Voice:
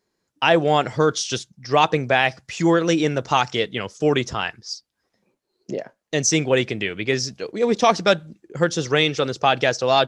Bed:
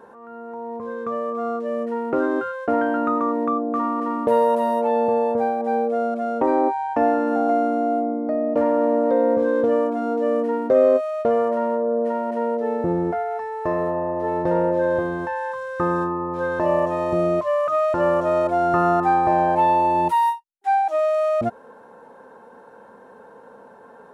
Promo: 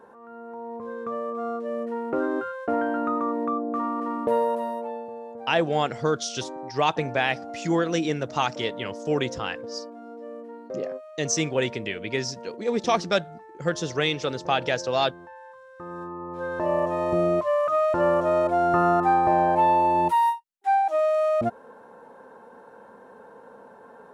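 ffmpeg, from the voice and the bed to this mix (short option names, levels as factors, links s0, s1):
-filter_complex "[0:a]adelay=5050,volume=0.501[s0];[1:a]volume=3.76,afade=t=out:st=4.3:d=0.77:silence=0.211349,afade=t=in:st=15.84:d=1.25:silence=0.158489[s1];[s0][s1]amix=inputs=2:normalize=0"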